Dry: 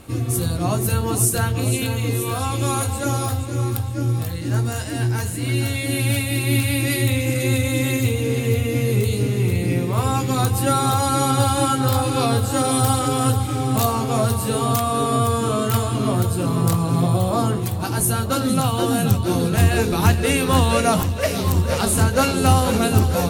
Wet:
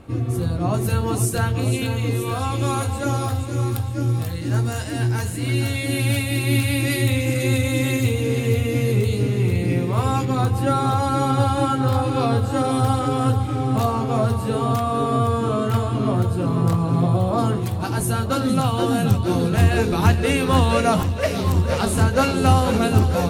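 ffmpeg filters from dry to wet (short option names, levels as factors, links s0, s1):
-af "asetnsamples=n=441:p=0,asendcmd='0.74 lowpass f 4000;3.35 lowpass f 7600;8.92 lowpass f 4300;10.25 lowpass f 1900;17.38 lowpass f 4000',lowpass=f=1600:p=1"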